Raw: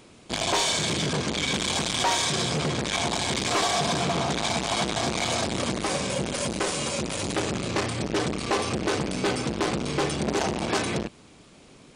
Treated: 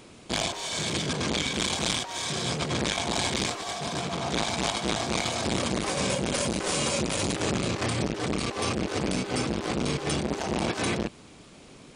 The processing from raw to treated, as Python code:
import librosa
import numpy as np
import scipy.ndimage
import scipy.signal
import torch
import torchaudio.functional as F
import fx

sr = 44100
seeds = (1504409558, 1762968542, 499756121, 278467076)

y = fx.over_compress(x, sr, threshold_db=-28.0, ratio=-0.5)